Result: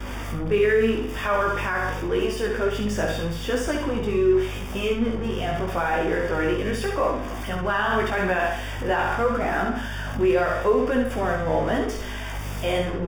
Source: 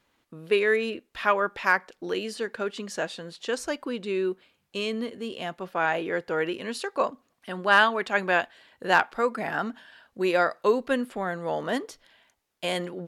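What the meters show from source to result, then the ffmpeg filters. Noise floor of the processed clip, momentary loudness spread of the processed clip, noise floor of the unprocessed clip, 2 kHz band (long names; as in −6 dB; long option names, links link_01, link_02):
−31 dBFS, 8 LU, −73 dBFS, −0.5 dB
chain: -filter_complex "[0:a]aeval=exprs='val(0)+0.5*0.0316*sgn(val(0))':channel_layout=same,aecho=1:1:67|134|201|268|335:0.562|0.242|0.104|0.0447|0.0192,anlmdn=3.98,aeval=exprs='val(0)+0.0178*(sin(2*PI*50*n/s)+sin(2*PI*2*50*n/s)/2+sin(2*PI*3*50*n/s)/3+sin(2*PI*4*50*n/s)/4+sin(2*PI*5*50*n/s)/5)':channel_layout=same,equalizer=frequency=72:width=2.6:gain=7,asplit=2[link_01][link_02];[link_02]adelay=48,volume=-11dB[link_03];[link_01][link_03]amix=inputs=2:normalize=0,alimiter=limit=-15dB:level=0:latency=1:release=14,asuperstop=centerf=4100:order=8:qfactor=5.6,flanger=delay=16:depth=3.3:speed=0.83,highshelf=frequency=3000:gain=-9,volume=5dB"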